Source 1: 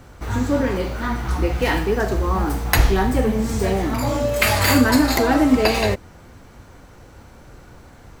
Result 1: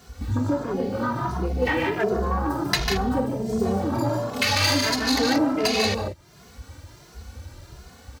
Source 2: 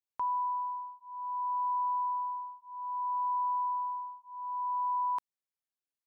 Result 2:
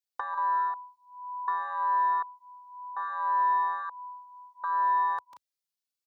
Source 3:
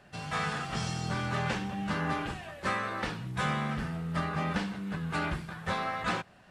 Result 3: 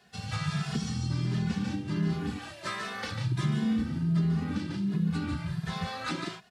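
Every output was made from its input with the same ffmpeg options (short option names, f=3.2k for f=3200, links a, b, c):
-filter_complex "[0:a]equalizer=f=4.5k:w=1:g=9,asplit=2[a][b];[b]aecho=0:1:145.8|180.8:0.562|0.398[c];[a][c]amix=inputs=2:normalize=0,afwtdn=0.0794,acontrast=76,aeval=exprs='1*(cos(1*acos(clip(val(0)/1,-1,1)))-cos(1*PI/2))+0.0708*(cos(2*acos(clip(val(0)/1,-1,1)))-cos(2*PI/2))+0.0126*(cos(5*acos(clip(val(0)/1,-1,1)))-cos(5*PI/2))+0.00631*(cos(7*acos(clip(val(0)/1,-1,1)))-cos(7*PI/2))':c=same,highshelf=f=8.2k:g=9,acompressor=threshold=-33dB:ratio=2.5,highpass=72,asplit=2[d][e];[e]adelay=2.4,afreqshift=1.4[f];[d][f]amix=inputs=2:normalize=1,volume=7dB"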